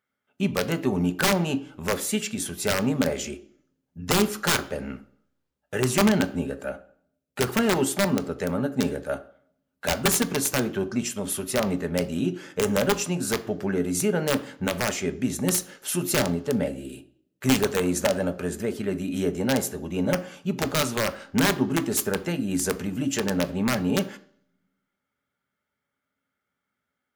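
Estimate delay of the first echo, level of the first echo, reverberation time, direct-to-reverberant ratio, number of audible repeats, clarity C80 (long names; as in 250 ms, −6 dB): no echo audible, no echo audible, 0.55 s, 9.0 dB, no echo audible, 19.0 dB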